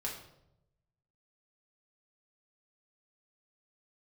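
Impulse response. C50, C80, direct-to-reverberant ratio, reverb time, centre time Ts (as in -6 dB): 6.0 dB, 9.0 dB, -3.5 dB, 0.85 s, 32 ms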